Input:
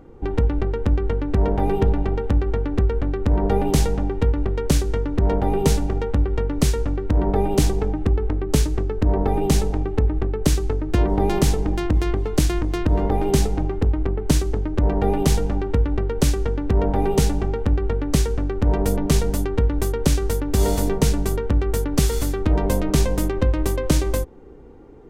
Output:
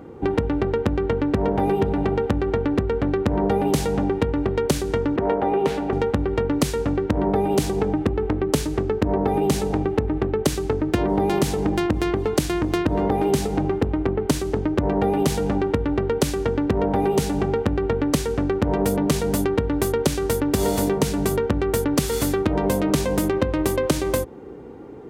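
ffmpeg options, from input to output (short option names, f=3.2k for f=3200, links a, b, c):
-filter_complex "[0:a]asettb=1/sr,asplit=3[a][b][c];[a]atrim=end=5.164[d];[b]atrim=start=5.16:end=5.93,asetpts=PTS-STARTPTS,afade=t=in:d=0.004:c=qsin,afade=t=out:st=0.766:d=0.004:c=qsin,acrossover=split=280 3400:gain=0.251 1 0.141[e][f][g];[e][f][g]amix=inputs=3:normalize=0[h];[c]atrim=start=5.926[i];[d][h]acrossfade=d=0.004:c1=hsin:c2=qsin[j];[j][i]acrossfade=d=0.004:c1=qsin:c2=hsin,highpass=110,equalizer=f=6.1k:w=1.5:g=-2.5,acompressor=threshold=-24dB:ratio=6,volume=7dB"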